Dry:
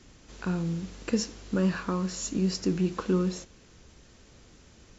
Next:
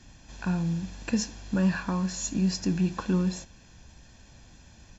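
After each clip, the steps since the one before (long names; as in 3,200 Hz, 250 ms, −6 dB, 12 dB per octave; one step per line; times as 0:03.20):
comb filter 1.2 ms, depth 60%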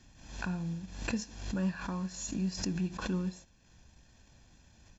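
transient designer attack 0 dB, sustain −5 dB
background raised ahead of every attack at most 75 dB per second
level −8 dB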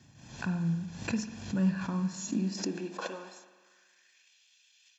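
pitch vibrato 5.2 Hz 19 cents
high-pass filter sweep 120 Hz → 2,900 Hz, 0:01.85–0:04.38
convolution reverb RT60 1.4 s, pre-delay 47 ms, DRR 9 dB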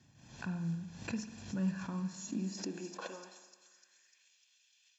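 delay with a high-pass on its return 299 ms, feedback 62%, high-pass 5,600 Hz, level −5.5 dB
level −6.5 dB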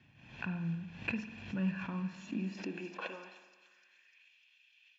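low-pass with resonance 2,600 Hz, resonance Q 3.4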